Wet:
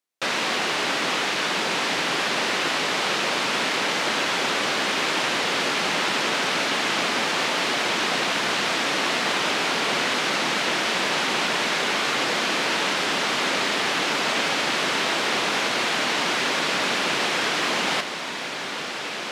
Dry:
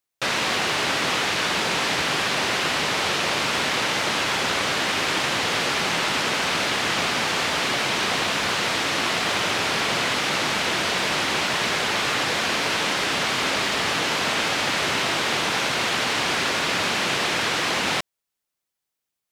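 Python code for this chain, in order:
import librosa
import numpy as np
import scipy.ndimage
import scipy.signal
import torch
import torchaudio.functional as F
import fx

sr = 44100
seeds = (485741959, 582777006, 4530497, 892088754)

y = scipy.signal.sosfilt(scipy.signal.cheby1(2, 1.0, 220.0, 'highpass', fs=sr, output='sos'), x)
y = fx.high_shelf(y, sr, hz=12000.0, db=-7.5)
y = fx.echo_diffused(y, sr, ms=1926, feedback_pct=65, wet_db=-8.5)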